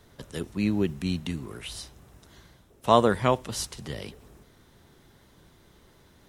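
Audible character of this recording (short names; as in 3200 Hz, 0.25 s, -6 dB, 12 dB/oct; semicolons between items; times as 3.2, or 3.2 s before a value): noise floor -58 dBFS; spectral tilt -5.5 dB/oct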